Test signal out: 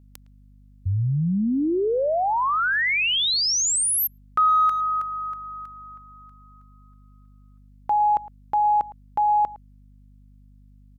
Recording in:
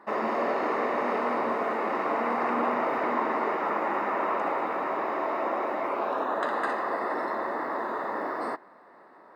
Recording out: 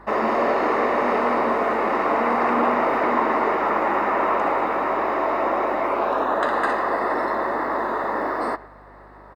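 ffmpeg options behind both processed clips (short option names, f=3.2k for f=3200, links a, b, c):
-filter_complex "[0:a]aeval=exprs='val(0)+0.00141*(sin(2*PI*50*n/s)+sin(2*PI*2*50*n/s)/2+sin(2*PI*3*50*n/s)/3+sin(2*PI*4*50*n/s)/4+sin(2*PI*5*50*n/s)/5)':c=same,asplit=2[a][b];[b]adelay=110,highpass=300,lowpass=3.4k,asoftclip=type=hard:threshold=-23dB,volume=-19dB[c];[a][c]amix=inputs=2:normalize=0,acontrast=79"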